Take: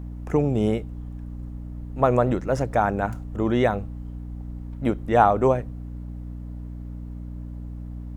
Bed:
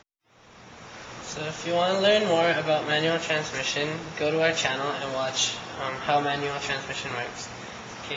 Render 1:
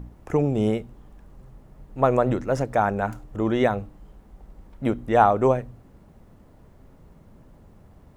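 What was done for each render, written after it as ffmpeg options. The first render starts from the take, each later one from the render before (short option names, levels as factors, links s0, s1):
-af "bandreject=f=60:t=h:w=4,bandreject=f=120:t=h:w=4,bandreject=f=180:t=h:w=4,bandreject=f=240:t=h:w=4,bandreject=f=300:t=h:w=4"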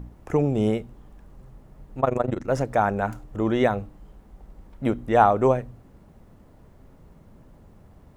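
-filter_complex "[0:a]asettb=1/sr,asplit=3[s0][s1][s2];[s0]atrim=end=2.004[s3];[s1]atrim=start=2:end=2.48,asetpts=PTS-STARTPTS,afade=t=in:d=0.004:c=qsin,afade=t=out:st=0.476:d=0.004:c=qsin,tremolo=f=24:d=0.889[s4];[s2]atrim=start=2.476[s5];[s3][s4]acrossfade=d=0.004:c1=hsin:c2=qsin[s6];[s6][s5]acrossfade=d=0.004:c1=qsin:c2=hsin"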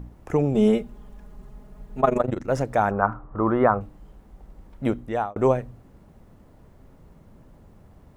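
-filter_complex "[0:a]asettb=1/sr,asplit=3[s0][s1][s2];[s0]atrim=end=0.544[s3];[s1]atrim=start=0.54:end=2.21,asetpts=PTS-STARTPTS,afade=t=in:d=0.004:c=qsin,afade=t=out:st=1.666:d=0.004:c=qsin,aecho=1:1:4.8:0.95,atrim=end_sample=73647[s4];[s2]atrim=start=2.206[s5];[s3][s4]acrossfade=d=0.004:c1=hsin:c2=qsin[s6];[s6][s5]acrossfade=d=0.004:c1=qsin:c2=hsin,asettb=1/sr,asplit=3[s7][s8][s9];[s7]atrim=end=2.914[s10];[s8]atrim=start=2.91:end=3.81,asetpts=PTS-STARTPTS,afade=t=in:d=0.004:c=qsin,afade=t=out:st=0.896:d=0.004:c=qsin,lowpass=f=1200:t=q:w=4.6[s11];[s9]atrim=start=3.806[s12];[s10][s11]acrossfade=d=0.004:c1=hsin:c2=qsin[s13];[s13][s12]acrossfade=d=0.004:c1=qsin:c2=hsin,asplit=2[s14][s15];[s14]atrim=end=5.36,asetpts=PTS-STARTPTS,afade=t=out:st=4.9:d=0.46[s16];[s15]atrim=start=5.36,asetpts=PTS-STARTPTS,afade=t=in:d=0.004:c=hsin[s17];[s16][s17]concat=n=2:v=0:a=1"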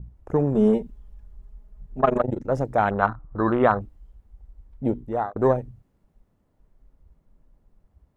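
-af "afwtdn=0.0316,adynamicequalizer=threshold=0.0158:dfrequency=1900:dqfactor=0.7:tfrequency=1900:tqfactor=0.7:attack=5:release=100:ratio=0.375:range=3:mode=boostabove:tftype=highshelf"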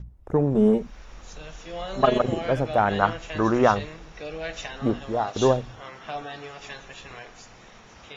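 -filter_complex "[1:a]volume=0.299[s0];[0:a][s0]amix=inputs=2:normalize=0"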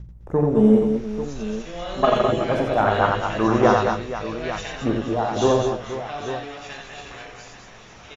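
-filter_complex "[0:a]asplit=2[s0][s1];[s1]adelay=18,volume=0.251[s2];[s0][s2]amix=inputs=2:normalize=0,aecho=1:1:42|88|207|225|476|841:0.376|0.668|0.398|0.282|0.251|0.282"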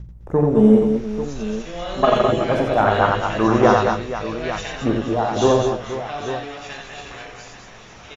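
-af "volume=1.33,alimiter=limit=0.794:level=0:latency=1"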